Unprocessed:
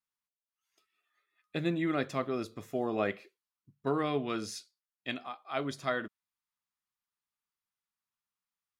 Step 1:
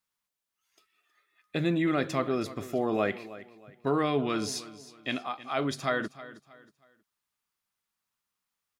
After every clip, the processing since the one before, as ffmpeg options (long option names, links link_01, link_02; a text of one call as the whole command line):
ffmpeg -i in.wav -filter_complex "[0:a]asplit=2[link_01][link_02];[link_02]alimiter=level_in=5.5dB:limit=-24dB:level=0:latency=1:release=33,volume=-5.5dB,volume=2dB[link_03];[link_01][link_03]amix=inputs=2:normalize=0,aecho=1:1:317|634|951:0.15|0.0494|0.0163" out.wav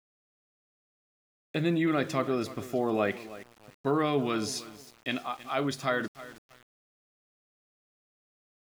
ffmpeg -i in.wav -af "aeval=exprs='val(0)*gte(abs(val(0)),0.00398)':channel_layout=same" out.wav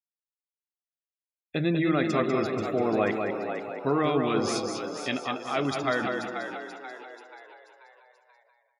ffmpeg -i in.wav -filter_complex "[0:a]asplit=2[link_01][link_02];[link_02]aecho=0:1:195|390|585|780|975:0.562|0.208|0.077|0.0285|0.0105[link_03];[link_01][link_03]amix=inputs=2:normalize=0,afftdn=noise_reduction=22:noise_floor=-44,asplit=2[link_04][link_05];[link_05]asplit=5[link_06][link_07][link_08][link_09][link_10];[link_06]adelay=484,afreqshift=67,volume=-8.5dB[link_11];[link_07]adelay=968,afreqshift=134,volume=-15.2dB[link_12];[link_08]adelay=1452,afreqshift=201,volume=-22dB[link_13];[link_09]adelay=1936,afreqshift=268,volume=-28.7dB[link_14];[link_10]adelay=2420,afreqshift=335,volume=-35.5dB[link_15];[link_11][link_12][link_13][link_14][link_15]amix=inputs=5:normalize=0[link_16];[link_04][link_16]amix=inputs=2:normalize=0,volume=1.5dB" out.wav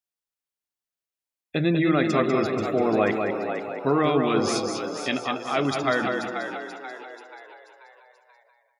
ffmpeg -i in.wav -af "bandreject=frequency=60:width_type=h:width=6,bandreject=frequency=120:width_type=h:width=6,volume=3.5dB" out.wav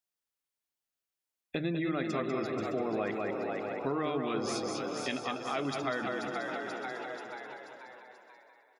ffmpeg -i in.wav -af "bandreject=frequency=50:width_type=h:width=6,bandreject=frequency=100:width_type=h:width=6,bandreject=frequency=150:width_type=h:width=6,aecho=1:1:613|1226|1839:0.168|0.0504|0.0151,acompressor=threshold=-35dB:ratio=2.5" out.wav